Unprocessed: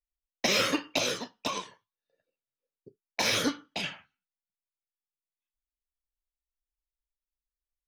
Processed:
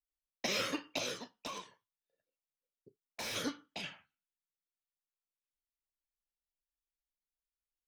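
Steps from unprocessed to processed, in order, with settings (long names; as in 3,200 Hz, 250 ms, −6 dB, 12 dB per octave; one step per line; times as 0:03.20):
0:01.46–0:03.36: gain into a clipping stage and back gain 29 dB
level −9 dB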